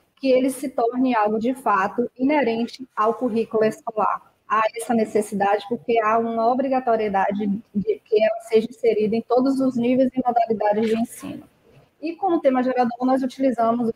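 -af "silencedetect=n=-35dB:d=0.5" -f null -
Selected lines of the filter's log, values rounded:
silence_start: 11.40
silence_end: 12.03 | silence_duration: 0.63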